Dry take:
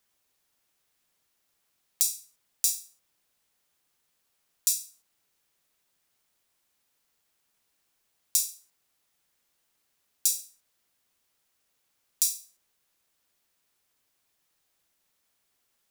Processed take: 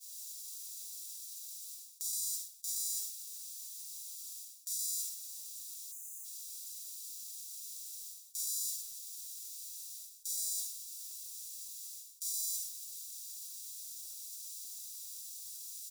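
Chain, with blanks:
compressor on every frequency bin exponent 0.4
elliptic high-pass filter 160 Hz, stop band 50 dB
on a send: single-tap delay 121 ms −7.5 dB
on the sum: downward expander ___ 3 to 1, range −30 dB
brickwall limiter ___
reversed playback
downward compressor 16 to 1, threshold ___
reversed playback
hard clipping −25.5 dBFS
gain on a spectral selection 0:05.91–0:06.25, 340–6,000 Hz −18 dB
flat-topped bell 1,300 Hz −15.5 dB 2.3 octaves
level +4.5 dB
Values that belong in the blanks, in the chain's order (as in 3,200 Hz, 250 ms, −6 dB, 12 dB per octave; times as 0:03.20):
−38 dBFS, −9 dBFS, −38 dBFS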